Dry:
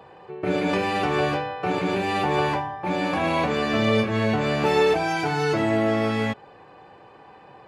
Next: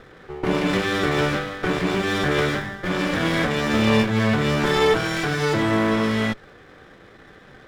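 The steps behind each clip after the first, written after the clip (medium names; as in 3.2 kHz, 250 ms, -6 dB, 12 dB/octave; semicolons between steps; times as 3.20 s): comb filter that takes the minimum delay 0.55 ms; trim +3.5 dB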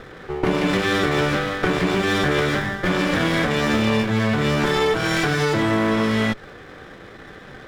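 compression, threshold -23 dBFS, peak gain reduction 9 dB; trim +6.5 dB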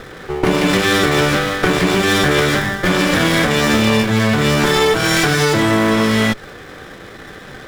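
treble shelf 5.7 kHz +11 dB; trim +5 dB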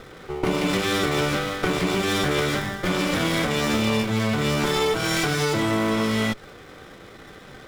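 band-stop 1.7 kHz, Q 7.7; trim -8 dB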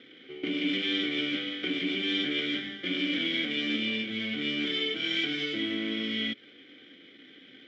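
vowel filter i; cabinet simulation 130–6600 Hz, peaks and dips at 160 Hz -5 dB, 250 Hz -5 dB, 510 Hz +4 dB, 780 Hz +10 dB, 1.6 kHz +5 dB, 3.2 kHz +10 dB; trim +3.5 dB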